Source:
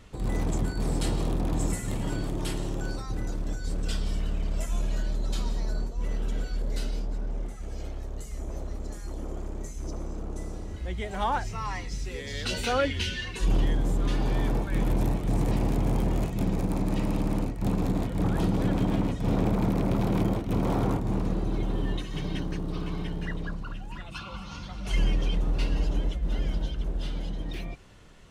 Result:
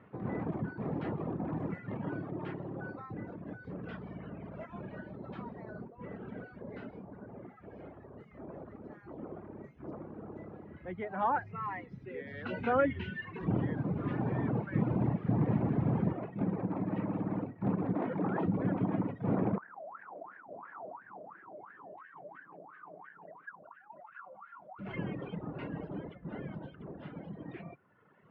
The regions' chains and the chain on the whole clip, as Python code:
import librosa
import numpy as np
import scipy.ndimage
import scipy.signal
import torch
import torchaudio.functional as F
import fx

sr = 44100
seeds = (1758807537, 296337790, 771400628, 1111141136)

y = fx.chain(x, sr, fx.delta_mod(bps=64000, step_db=-35.5),
    fx.bass_treble(bass_db=6, treble_db=1), at=(12.57, 16.12))
y = fx.chain(y, sr, fx.highpass(hz=200.0, slope=12),
    fx.env_flatten(amount_pct=70), at=(17.95, 18.46))
y = fx.chain(y, sr, fx.cvsd(bps=32000),
    fx.wah_lfo(hz=2.9, low_hz=590.0, high_hz=1700.0, q=12.0),
    fx.env_flatten(amount_pct=50), at=(19.58, 24.79))
y = scipy.signal.sosfilt(scipy.signal.butter(4, 1900.0, 'lowpass', fs=sr, output='sos'), y)
y = fx.dereverb_blind(y, sr, rt60_s=1.3)
y = scipy.signal.sosfilt(scipy.signal.butter(4, 120.0, 'highpass', fs=sr, output='sos'), y)
y = y * 10.0 ** (-1.5 / 20.0)